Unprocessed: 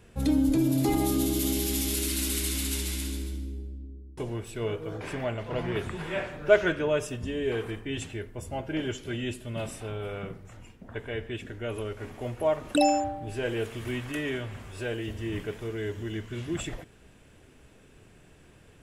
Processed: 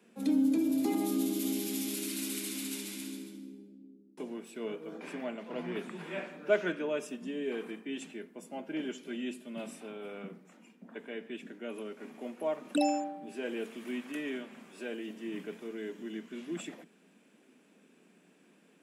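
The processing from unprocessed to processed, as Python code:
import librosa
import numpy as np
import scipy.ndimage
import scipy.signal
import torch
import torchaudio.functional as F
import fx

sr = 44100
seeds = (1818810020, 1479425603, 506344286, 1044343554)

y = scipy.signal.sosfilt(scipy.signal.butter(12, 170.0, 'highpass', fs=sr, output='sos'), x)
y = fx.small_body(y, sr, hz=(230.0, 2400.0), ring_ms=25, db=7)
y = y * 10.0 ** (-8.0 / 20.0)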